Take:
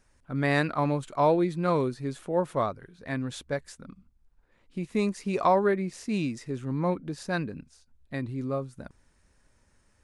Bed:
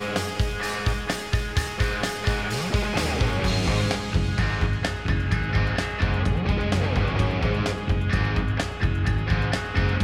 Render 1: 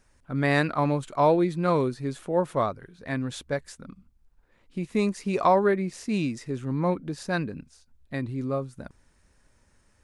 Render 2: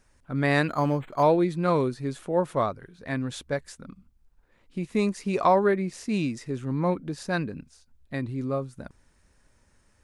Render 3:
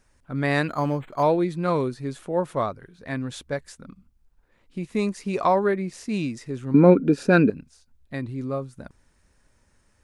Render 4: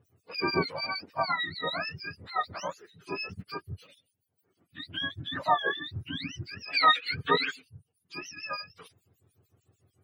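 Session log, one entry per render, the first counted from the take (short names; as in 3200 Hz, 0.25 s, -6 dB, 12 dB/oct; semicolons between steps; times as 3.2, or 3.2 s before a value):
gain +2 dB
0.68–1.23 decimation joined by straight lines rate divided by 8×
6.74–7.5 small resonant body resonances 270/410/1400/2400 Hz, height 17 dB, ringing for 25 ms
spectrum mirrored in octaves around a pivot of 820 Hz; harmonic tremolo 6.7 Hz, depth 100%, crossover 2400 Hz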